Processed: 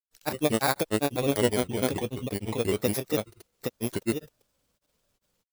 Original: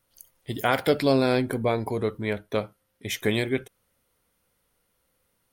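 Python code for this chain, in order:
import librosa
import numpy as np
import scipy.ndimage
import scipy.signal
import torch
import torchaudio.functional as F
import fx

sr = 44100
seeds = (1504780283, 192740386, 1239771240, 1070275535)

y = fx.bit_reversed(x, sr, seeds[0], block=16)
y = fx.granulator(y, sr, seeds[1], grain_ms=100.0, per_s=20.0, spray_ms=772.0, spread_st=3)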